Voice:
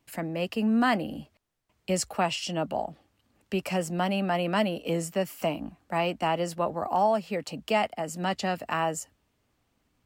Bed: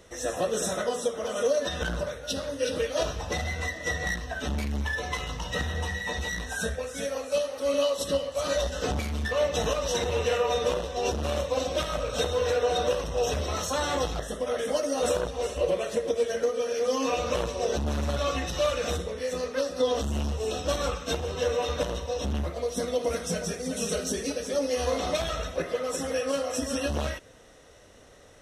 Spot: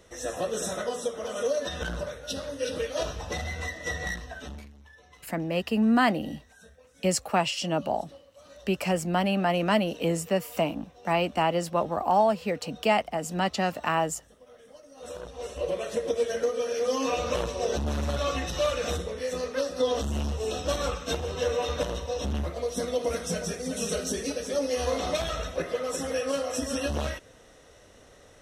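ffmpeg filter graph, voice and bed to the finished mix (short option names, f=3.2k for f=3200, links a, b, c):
-filter_complex "[0:a]adelay=5150,volume=2dB[a];[1:a]volume=20.5dB,afade=t=out:st=4.07:d=0.67:silence=0.0891251,afade=t=in:st=14.94:d=1.15:silence=0.0707946[b];[a][b]amix=inputs=2:normalize=0"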